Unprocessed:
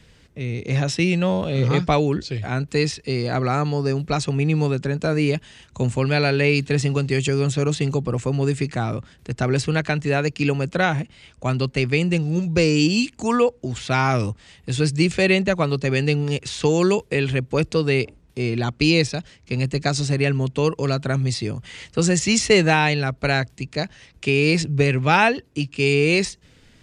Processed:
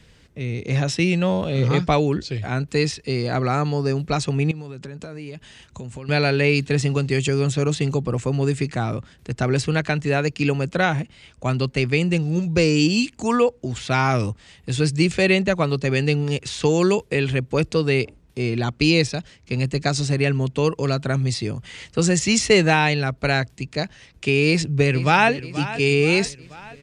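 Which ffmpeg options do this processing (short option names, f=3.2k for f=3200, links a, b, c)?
-filter_complex "[0:a]asettb=1/sr,asplit=3[a][b][c];[a]atrim=end=4.514[d];[b]atrim=start=4.51:end=6.09,asetpts=PTS-STARTPTS,afade=t=in:d=0.004:c=qsin,afade=t=out:st=1.576:d=0.004:c=qsin,acompressor=threshold=-31dB:ratio=8:attack=3.2:release=140:knee=1:detection=peak[e];[c]atrim=start=6.086[f];[d][e]acrossfade=d=0.004:c1=hsin:c2=qsin[g];[g][f]acrossfade=d=0.004:c1=qsin:c2=hsin,asplit=2[h][i];[i]afade=t=in:st=24.46:d=0.01,afade=t=out:st=25.31:d=0.01,aecho=0:1:480|960|1440|1920|2400|2880:0.199526|0.109739|0.0603567|0.0331962|0.0182579|0.0100418[j];[h][j]amix=inputs=2:normalize=0"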